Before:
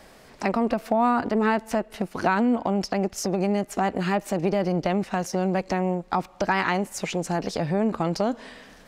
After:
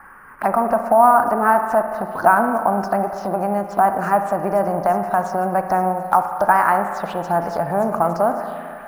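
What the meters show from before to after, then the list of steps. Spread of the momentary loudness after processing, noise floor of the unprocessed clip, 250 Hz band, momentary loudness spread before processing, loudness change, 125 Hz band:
7 LU, -51 dBFS, -1.0 dB, 6 LU, +6.5 dB, -1.0 dB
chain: high-order bell 1 kHz +13 dB; on a send: feedback echo behind a high-pass 858 ms, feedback 64%, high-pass 3.4 kHz, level -12.5 dB; on the sum: level-controlled noise filter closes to 1.5 kHz, open at -12.5 dBFS; touch-sensitive phaser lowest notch 580 Hz, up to 3.6 kHz, full sweep at -17 dBFS; spring tank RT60 2 s, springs 35/59 ms, chirp 30 ms, DRR 6.5 dB; in parallel at -9 dB: sample-rate reducer 11 kHz, jitter 0%; on the sum: tape noise reduction on one side only encoder only; trim -4.5 dB

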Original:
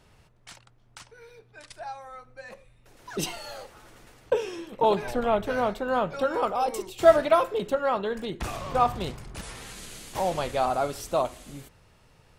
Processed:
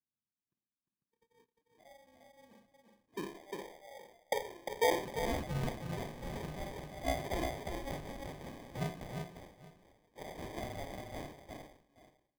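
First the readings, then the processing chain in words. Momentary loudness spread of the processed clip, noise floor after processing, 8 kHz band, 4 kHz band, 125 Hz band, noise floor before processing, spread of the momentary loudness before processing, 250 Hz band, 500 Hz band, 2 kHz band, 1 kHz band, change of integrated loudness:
16 LU, under -85 dBFS, -9.5 dB, -8.5 dB, -3.0 dB, -60 dBFS, 19 LU, -9.0 dB, -14.5 dB, -8.5 dB, -15.0 dB, -13.5 dB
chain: Schroeder reverb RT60 0.43 s, combs from 31 ms, DRR 3 dB; level-controlled noise filter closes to 340 Hz, open at -21 dBFS; peaking EQ 2 kHz +3 dB 1.5 oct; gate -50 dBFS, range -29 dB; on a send: multi-tap echo 352/819 ms -4/-18.5 dB; on the sum: band-pass sweep 260 Hz -> 2.3 kHz, 2.88–6.18 s; sample-and-hold 32×; tone controls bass +1 dB, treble -3 dB; trim -5.5 dB

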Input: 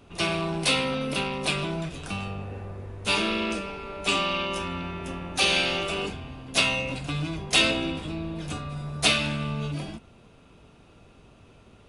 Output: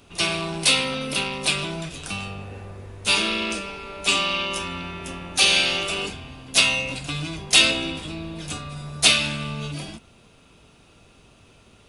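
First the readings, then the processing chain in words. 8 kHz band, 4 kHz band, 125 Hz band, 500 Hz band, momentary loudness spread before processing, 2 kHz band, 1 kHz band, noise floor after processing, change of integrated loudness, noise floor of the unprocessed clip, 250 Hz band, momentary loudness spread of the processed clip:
+8.5 dB, +6.0 dB, -1.0 dB, -0.5 dB, 13 LU, +4.0 dB, +0.5 dB, -54 dBFS, +5.0 dB, -54 dBFS, -1.0 dB, 17 LU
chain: treble shelf 2.5 kHz +10.5 dB; trim -1 dB

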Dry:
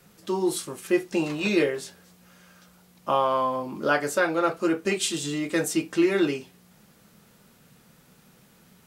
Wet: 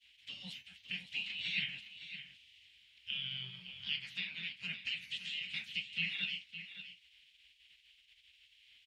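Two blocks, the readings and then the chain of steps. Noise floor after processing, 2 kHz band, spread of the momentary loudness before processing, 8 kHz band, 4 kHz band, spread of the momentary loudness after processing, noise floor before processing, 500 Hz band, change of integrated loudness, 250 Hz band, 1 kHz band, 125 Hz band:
-68 dBFS, -9.0 dB, 7 LU, -30.0 dB, -1.5 dB, 14 LU, -58 dBFS, under -40 dB, -14.0 dB, -31.0 dB, under -40 dB, -17.0 dB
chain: high-pass 78 Hz 12 dB/octave; band-stop 6.1 kHz, Q 13; spectral gate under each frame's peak -20 dB weak; FFT filter 190 Hz 0 dB, 360 Hz -19 dB, 600 Hz -23 dB, 1.2 kHz -25 dB, 2.1 kHz +2 dB, 3 kHz +11 dB, 4.8 kHz -7 dB, 14 kHz -29 dB; in parallel at -0.5 dB: compression, threshold -43 dBFS, peak gain reduction 16 dB; on the sum: flange 1.3 Hz, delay 3.3 ms, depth 4.9 ms, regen -80%; delay 563 ms -11.5 dB; trim -2.5 dB

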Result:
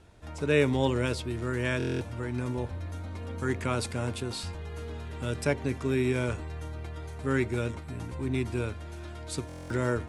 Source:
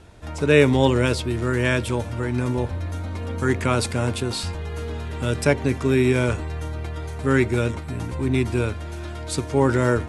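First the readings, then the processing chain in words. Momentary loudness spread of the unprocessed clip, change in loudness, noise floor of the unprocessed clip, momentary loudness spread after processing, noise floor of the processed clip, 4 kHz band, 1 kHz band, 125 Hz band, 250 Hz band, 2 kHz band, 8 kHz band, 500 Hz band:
12 LU, -8.5 dB, -33 dBFS, 12 LU, -42 dBFS, -8.5 dB, -9.0 dB, -8.5 dB, -8.5 dB, -8.5 dB, -8.5 dB, -9.0 dB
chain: buffer glitch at 1.78/9.47 s, samples 1024, times 9; trim -8.5 dB

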